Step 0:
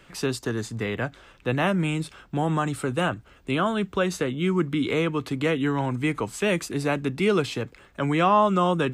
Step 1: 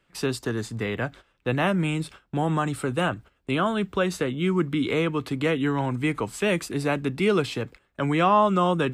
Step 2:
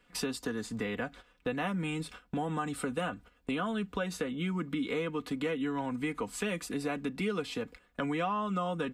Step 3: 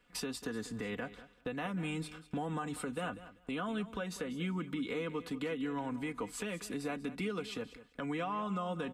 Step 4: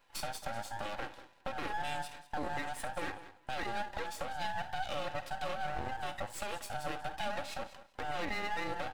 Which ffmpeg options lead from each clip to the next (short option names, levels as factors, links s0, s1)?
-af "agate=range=0.178:threshold=0.00794:ratio=16:detection=peak,equalizer=f=6400:w=3.9:g=-3.5"
-af "aecho=1:1:4.1:0.64,acompressor=threshold=0.02:ratio=3"
-af "alimiter=level_in=1.12:limit=0.0631:level=0:latency=1:release=120,volume=0.891,aecho=1:1:193|386:0.178|0.0302,volume=0.708"
-af "afftfilt=real='real(if(between(b,1,1008),(2*floor((b-1)/48)+1)*48-b,b),0)':imag='imag(if(between(b,1,1008),(2*floor((b-1)/48)+1)*48-b,b),0)*if(between(b,1,1008),-1,1)':win_size=2048:overlap=0.75,aecho=1:1:49|67:0.178|0.133,aeval=exprs='max(val(0),0)':c=same,volume=1.5"